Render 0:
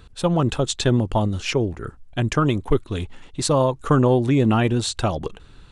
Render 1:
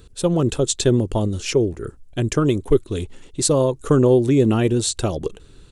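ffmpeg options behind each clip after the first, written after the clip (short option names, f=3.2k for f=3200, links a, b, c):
-af "firequalizer=gain_entry='entry(230,0);entry(390,6);entry(770,-6);entry(7500,7)':delay=0.05:min_phase=1"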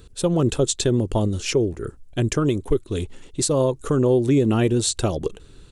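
-af "alimiter=limit=-10dB:level=0:latency=1:release=226"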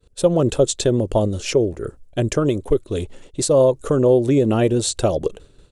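-af "agate=range=-33dB:threshold=-38dB:ratio=3:detection=peak,equalizer=f=580:w=2.1:g=9"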